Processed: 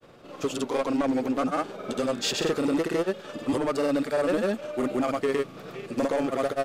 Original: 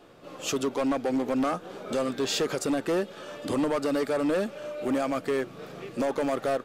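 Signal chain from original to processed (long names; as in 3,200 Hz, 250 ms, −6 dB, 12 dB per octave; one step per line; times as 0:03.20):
granular cloud, pitch spread up and down by 0 semitones
level +2.5 dB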